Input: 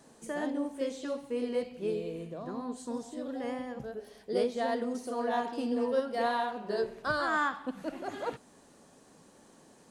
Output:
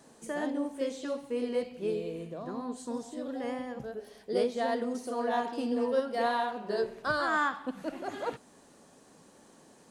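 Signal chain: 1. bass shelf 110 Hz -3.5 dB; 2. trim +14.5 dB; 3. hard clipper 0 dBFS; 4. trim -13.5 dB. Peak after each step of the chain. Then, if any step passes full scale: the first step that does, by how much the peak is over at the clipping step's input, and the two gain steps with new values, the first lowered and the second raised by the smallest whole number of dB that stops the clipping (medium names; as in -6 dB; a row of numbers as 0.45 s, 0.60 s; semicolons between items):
-17.0 dBFS, -2.5 dBFS, -2.5 dBFS, -16.0 dBFS; nothing clips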